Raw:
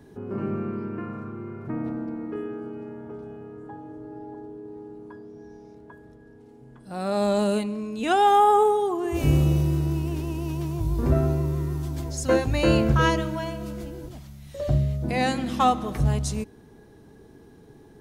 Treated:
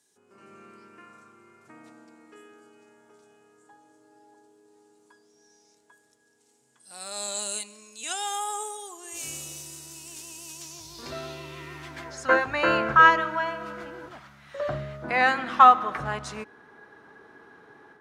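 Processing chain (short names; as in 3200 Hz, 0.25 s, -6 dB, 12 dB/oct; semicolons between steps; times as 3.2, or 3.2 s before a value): AGC gain up to 8.5 dB; band-pass sweep 7600 Hz -> 1400 Hz, 10.52–12.26; gain +6.5 dB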